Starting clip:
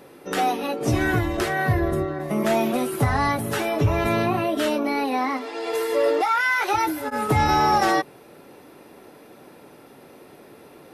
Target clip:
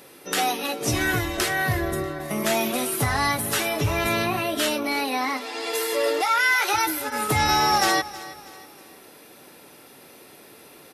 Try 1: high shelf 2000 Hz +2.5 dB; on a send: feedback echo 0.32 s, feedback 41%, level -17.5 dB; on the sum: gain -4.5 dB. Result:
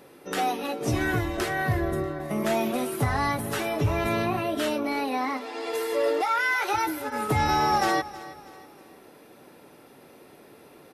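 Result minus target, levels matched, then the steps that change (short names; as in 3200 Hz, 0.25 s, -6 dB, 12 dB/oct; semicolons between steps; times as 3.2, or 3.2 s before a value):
4000 Hz band -5.5 dB
change: high shelf 2000 Hz +14 dB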